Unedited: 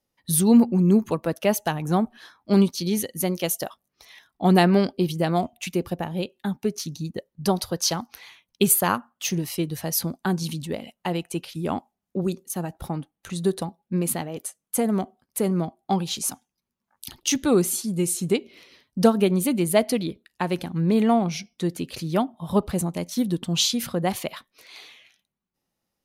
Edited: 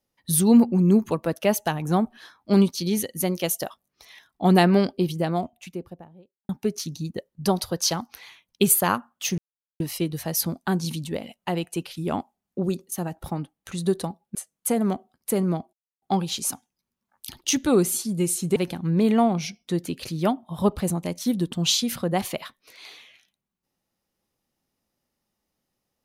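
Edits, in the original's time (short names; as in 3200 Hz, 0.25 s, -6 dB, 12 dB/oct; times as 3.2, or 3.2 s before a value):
4.8–6.49 studio fade out
9.38 insert silence 0.42 s
13.93–14.43 cut
15.81 insert silence 0.29 s
18.35–20.47 cut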